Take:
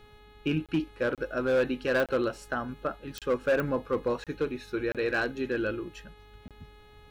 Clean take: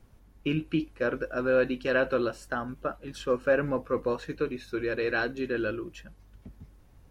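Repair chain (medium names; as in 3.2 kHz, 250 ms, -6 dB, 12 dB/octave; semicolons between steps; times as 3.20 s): clip repair -20 dBFS; de-click; de-hum 420 Hz, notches 10; interpolate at 0.66/1.15/2.06/3.19/4.24/4.92/6.48 s, 27 ms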